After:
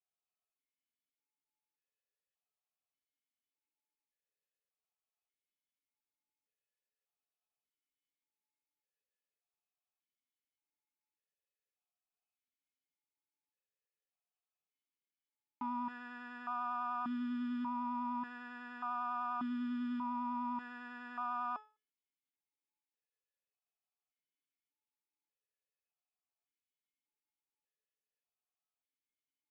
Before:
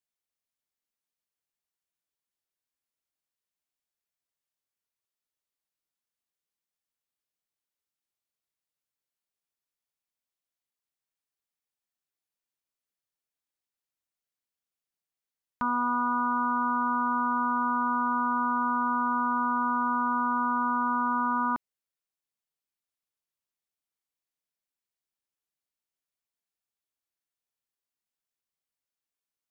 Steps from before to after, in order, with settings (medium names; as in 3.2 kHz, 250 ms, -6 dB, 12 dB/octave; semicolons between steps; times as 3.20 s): vibrato 10 Hz 18 cents; in parallel at -5.5 dB: hard clipper -32 dBFS, distortion -6 dB; on the sum: feedback comb 430 Hz, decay 0.35 s, harmonics all, mix 90%; stepped vowel filter 1.7 Hz; trim +18 dB